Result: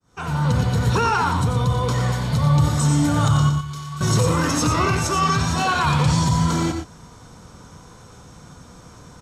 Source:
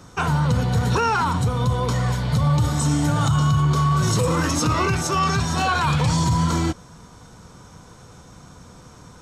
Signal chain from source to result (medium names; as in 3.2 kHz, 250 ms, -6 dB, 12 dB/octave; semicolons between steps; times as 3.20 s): fade-in on the opening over 0.50 s; 3.49–4.01 s: amplifier tone stack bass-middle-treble 5-5-5; multi-tap echo 90/117 ms -7.5/-9.5 dB